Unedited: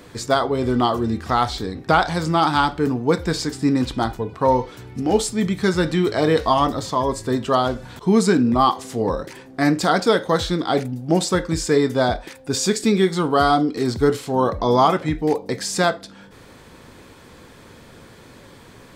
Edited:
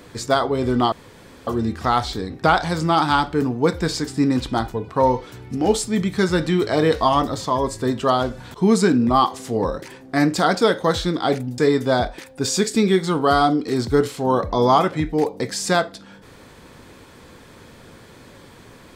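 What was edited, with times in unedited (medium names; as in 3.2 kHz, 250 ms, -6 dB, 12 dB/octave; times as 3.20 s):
0.92 s: insert room tone 0.55 s
11.03–11.67 s: delete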